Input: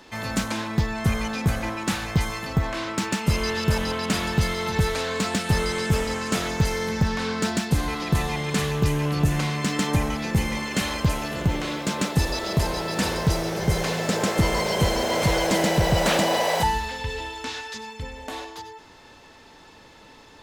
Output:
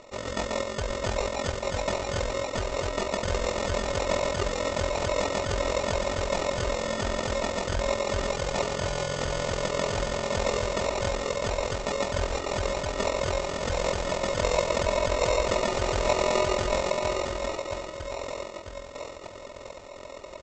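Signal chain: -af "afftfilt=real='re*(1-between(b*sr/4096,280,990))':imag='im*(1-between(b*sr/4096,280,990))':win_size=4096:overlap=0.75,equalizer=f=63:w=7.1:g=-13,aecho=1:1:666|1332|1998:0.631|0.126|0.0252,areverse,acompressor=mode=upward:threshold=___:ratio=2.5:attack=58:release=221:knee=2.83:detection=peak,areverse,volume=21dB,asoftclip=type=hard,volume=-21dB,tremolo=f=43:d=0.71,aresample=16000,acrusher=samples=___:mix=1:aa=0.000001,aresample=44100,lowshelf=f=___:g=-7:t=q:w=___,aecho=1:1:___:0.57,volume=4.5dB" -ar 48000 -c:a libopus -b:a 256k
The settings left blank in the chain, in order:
-39dB, 10, 370, 3, 3.2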